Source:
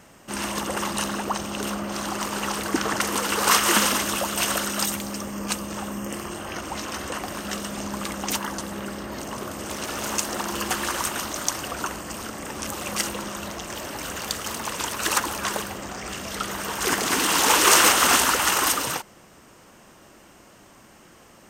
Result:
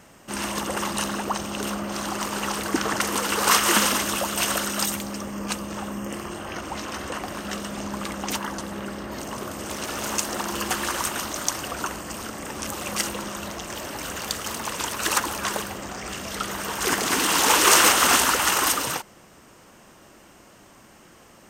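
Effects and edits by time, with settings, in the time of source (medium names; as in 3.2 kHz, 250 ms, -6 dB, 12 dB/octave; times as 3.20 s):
5.03–9.11 s: treble shelf 5.3 kHz -5 dB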